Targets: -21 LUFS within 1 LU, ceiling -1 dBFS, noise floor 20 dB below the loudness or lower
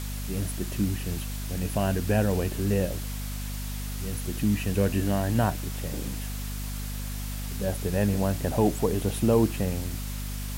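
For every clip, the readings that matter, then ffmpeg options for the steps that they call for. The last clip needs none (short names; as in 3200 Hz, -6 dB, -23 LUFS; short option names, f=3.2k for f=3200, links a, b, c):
hum 50 Hz; harmonics up to 250 Hz; hum level -31 dBFS; noise floor -33 dBFS; noise floor target -49 dBFS; loudness -28.5 LUFS; peak -9.0 dBFS; loudness target -21.0 LUFS
-> -af "bandreject=f=50:t=h:w=4,bandreject=f=100:t=h:w=4,bandreject=f=150:t=h:w=4,bandreject=f=200:t=h:w=4,bandreject=f=250:t=h:w=4"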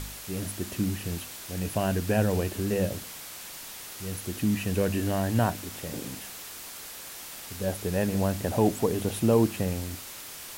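hum none; noise floor -42 dBFS; noise floor target -50 dBFS
-> -af "afftdn=nr=8:nf=-42"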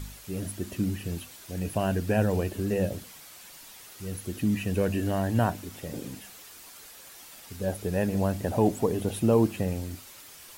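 noise floor -48 dBFS; noise floor target -49 dBFS
-> -af "afftdn=nr=6:nf=-48"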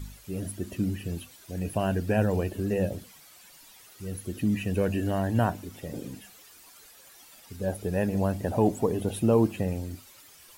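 noise floor -53 dBFS; loudness -29.0 LUFS; peak -10.0 dBFS; loudness target -21.0 LUFS
-> -af "volume=8dB"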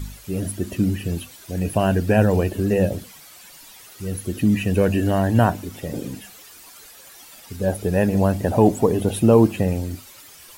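loudness -21.0 LUFS; peak -2.0 dBFS; noise floor -45 dBFS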